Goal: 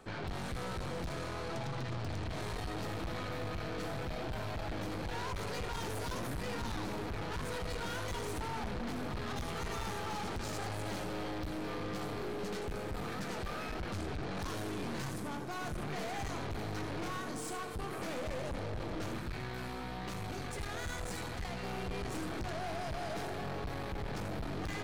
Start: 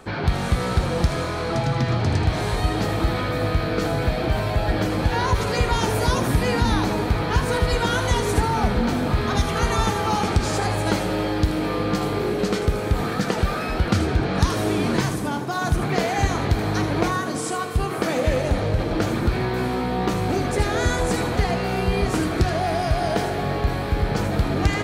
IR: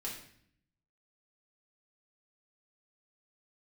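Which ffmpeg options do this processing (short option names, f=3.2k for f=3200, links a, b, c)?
-filter_complex "[0:a]asettb=1/sr,asplit=3[a][b][c];[a]atrim=end=19.184[d];[b]atrim=start=19.18:end=21.63,asetpts=PTS-STARTPTS,afade=t=in:d=0.004:c=qsin,afade=t=out:st=2.446:d=0.004:c=qsin,equalizer=f=350:t=o:w=2.6:g=-7.5[e];[c]atrim=start=21.626[f];[d][e]acrossfade=d=0.004:c1=hsin:c2=qsin[g];[g][f]acrossfade=d=0.004:c1=qsin:c2=hsin,aeval=exprs='(tanh(25.1*val(0)+0.6)-tanh(0.6))/25.1':c=same,volume=-8.5dB"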